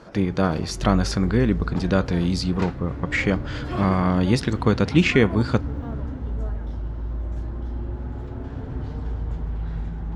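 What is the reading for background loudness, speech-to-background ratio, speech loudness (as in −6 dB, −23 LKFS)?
−32.0 LKFS, 10.0 dB, −22.0 LKFS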